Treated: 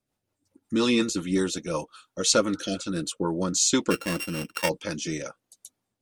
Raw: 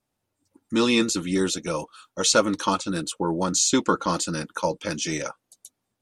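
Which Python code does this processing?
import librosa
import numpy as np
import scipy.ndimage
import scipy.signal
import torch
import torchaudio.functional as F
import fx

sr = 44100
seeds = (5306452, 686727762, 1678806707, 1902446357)

y = fx.sample_sort(x, sr, block=16, at=(3.9, 4.68), fade=0.02)
y = fx.rotary_switch(y, sr, hz=5.5, then_hz=1.0, switch_at_s=2.86)
y = fx.spec_repair(y, sr, seeds[0], start_s=2.55, length_s=0.25, low_hz=720.0, high_hz=1500.0, source='after')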